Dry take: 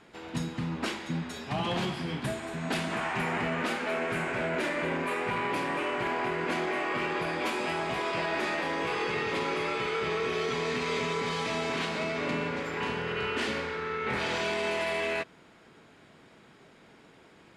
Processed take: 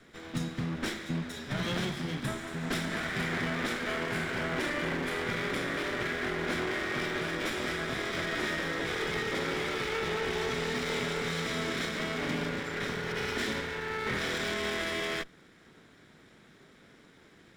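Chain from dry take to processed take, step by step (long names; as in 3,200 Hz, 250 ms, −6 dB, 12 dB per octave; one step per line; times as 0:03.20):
lower of the sound and its delayed copy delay 0.54 ms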